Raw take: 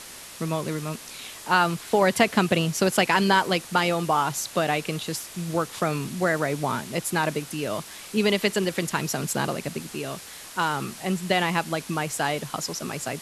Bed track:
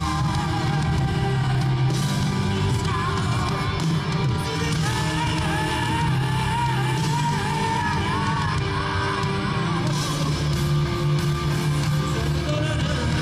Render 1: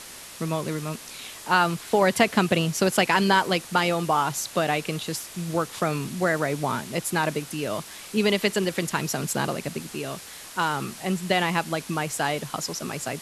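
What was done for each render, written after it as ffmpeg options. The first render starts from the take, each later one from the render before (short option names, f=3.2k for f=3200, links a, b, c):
-af anull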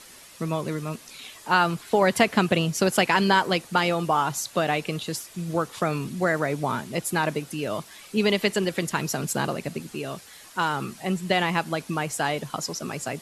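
-af "afftdn=nr=8:nf=-42"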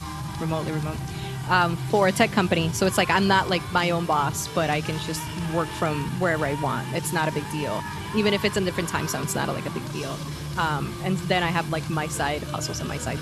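-filter_complex "[1:a]volume=-10dB[a];[0:a][a]amix=inputs=2:normalize=0"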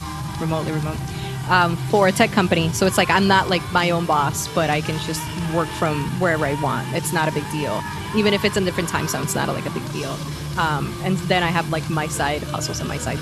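-af "volume=4dB,alimiter=limit=-1dB:level=0:latency=1"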